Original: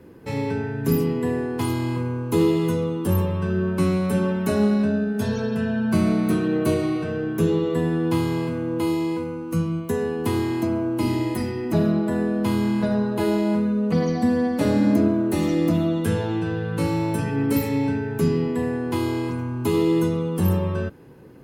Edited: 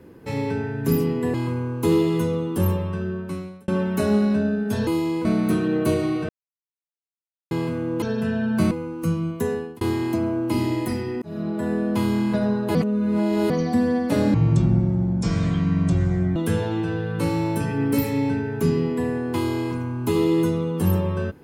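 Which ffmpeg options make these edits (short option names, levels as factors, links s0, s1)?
-filter_complex "[0:a]asplit=15[s0][s1][s2][s3][s4][s5][s6][s7][s8][s9][s10][s11][s12][s13][s14];[s0]atrim=end=1.342[s15];[s1]atrim=start=1.828:end=4.17,asetpts=PTS-STARTPTS,afade=t=out:st=1.312:d=1.03[s16];[s2]atrim=start=4.17:end=5.362,asetpts=PTS-STARTPTS,afade=t=in:d=0.004:c=hsin[s17];[s3]atrim=start=8.818:end=9.202[s18];[s4]atrim=start=6.048:end=7.09,asetpts=PTS-STARTPTS,afade=t=out:st=1.038:d=0.004:c=hsin[s19];[s5]atrim=start=7.09:end=8.31,asetpts=PTS-STARTPTS,volume=0[s20];[s6]atrim=start=8.31:end=8.822,asetpts=PTS-STARTPTS,afade=t=in:d=0.004:c=hsin[s21];[s7]atrim=start=5.358:end=6.052[s22];[s8]atrim=start=9.198:end=10.3,asetpts=PTS-STARTPTS,afade=t=out:st=0.792:d=0.31[s23];[s9]atrim=start=10.3:end=11.71,asetpts=PTS-STARTPTS,afade=t=in:d=0.004:c=hsin,afade=t=out:st=1.406:d=0.004:c=hsin[s24];[s10]atrim=start=11.71:end=13.242,asetpts=PTS-STARTPTS,afade=t=in:d=0.71:c=qsin[s25];[s11]atrim=start=13.238:end=13.992,asetpts=PTS-STARTPTS,areverse[s26];[s12]atrim=start=13.988:end=14.834[s27];[s13]atrim=start=14.83:end=15.94,asetpts=PTS-STARTPTS,asetrate=24255,aresample=44100[s28];[s14]atrim=start=15.936[s29];[s16][s17]concat=n=2:v=0:a=1[s30];[s15][s30]acrossfade=d=0.004:c1=hsin:c2=hsin[s31];[s31][s18]acrossfade=d=0.004:c1=hsin:c2=hsin[s32];[s19][s20][s21]concat=n=3:v=0:a=1[s33];[s32][s33]acrossfade=d=0.004:c1=hsin:c2=hsin[s34];[s34][s22]acrossfade=d=0.004:c1=hsin:c2=hsin[s35];[s23][s24][s25]concat=n=3:v=0:a=1[s36];[s35][s36]acrossfade=d=0.004:c1=hsin:c2=hsin[s37];[s37][s26]acrossfade=d=0.004:c1=hsin:c2=hsin[s38];[s38][s27]acrossfade=d=0.004:c1=hsin:c2=hsin[s39];[s39][s28]acrossfade=d=0.004:c1=hsin:c2=hsin[s40];[s40][s29]acrossfade=d=0.004:c1=hsin:c2=hsin"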